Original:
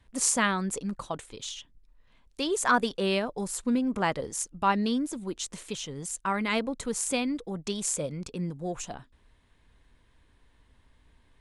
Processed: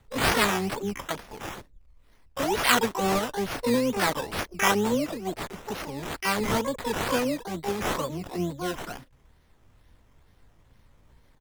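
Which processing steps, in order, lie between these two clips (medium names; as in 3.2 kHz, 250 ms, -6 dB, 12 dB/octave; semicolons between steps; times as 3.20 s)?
decimation with a swept rate 16×, swing 60% 2.2 Hz; harmony voices -12 st -15 dB, +12 st -1 dB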